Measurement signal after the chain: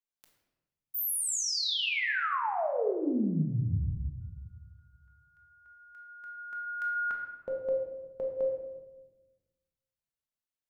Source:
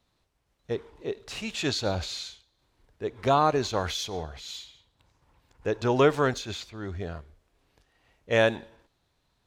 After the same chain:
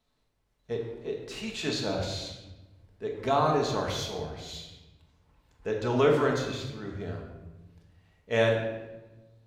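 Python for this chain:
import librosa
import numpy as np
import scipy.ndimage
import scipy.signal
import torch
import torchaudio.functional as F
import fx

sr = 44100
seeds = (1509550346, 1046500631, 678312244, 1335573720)

y = fx.room_shoebox(x, sr, seeds[0], volume_m3=650.0, walls='mixed', distance_m=1.5)
y = y * 10.0 ** (-5.5 / 20.0)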